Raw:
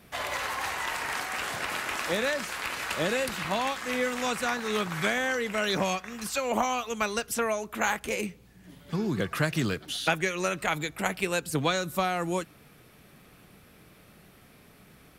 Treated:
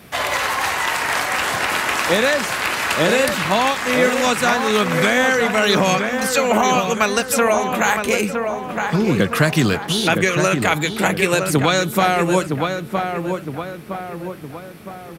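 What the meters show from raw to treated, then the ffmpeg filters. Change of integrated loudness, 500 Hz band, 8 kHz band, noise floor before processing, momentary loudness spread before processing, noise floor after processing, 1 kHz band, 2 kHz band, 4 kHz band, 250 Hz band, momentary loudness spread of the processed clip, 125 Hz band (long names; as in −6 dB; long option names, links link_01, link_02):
+11.5 dB, +12.5 dB, +11.5 dB, −56 dBFS, 5 LU, −35 dBFS, +12.0 dB, +11.5 dB, +11.5 dB, +12.5 dB, 10 LU, +12.5 dB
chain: -filter_complex "[0:a]highpass=67,asplit=2[link_01][link_02];[link_02]adelay=963,lowpass=frequency=1900:poles=1,volume=-5.5dB,asplit=2[link_03][link_04];[link_04]adelay=963,lowpass=frequency=1900:poles=1,volume=0.51,asplit=2[link_05][link_06];[link_06]adelay=963,lowpass=frequency=1900:poles=1,volume=0.51,asplit=2[link_07][link_08];[link_08]adelay=963,lowpass=frequency=1900:poles=1,volume=0.51,asplit=2[link_09][link_10];[link_10]adelay=963,lowpass=frequency=1900:poles=1,volume=0.51,asplit=2[link_11][link_12];[link_12]adelay=963,lowpass=frequency=1900:poles=1,volume=0.51[link_13];[link_01][link_03][link_05][link_07][link_09][link_11][link_13]amix=inputs=7:normalize=0,alimiter=level_in=15dB:limit=-1dB:release=50:level=0:latency=1,volume=-3.5dB"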